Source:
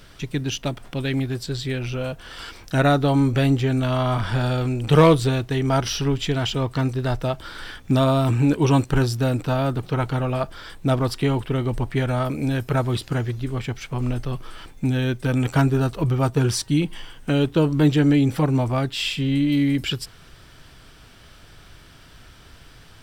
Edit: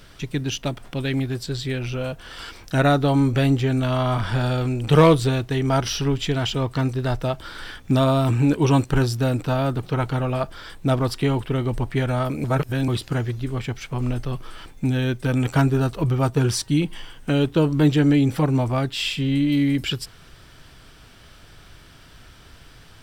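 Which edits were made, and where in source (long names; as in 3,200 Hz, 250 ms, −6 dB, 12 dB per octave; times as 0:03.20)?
0:12.44–0:12.88: reverse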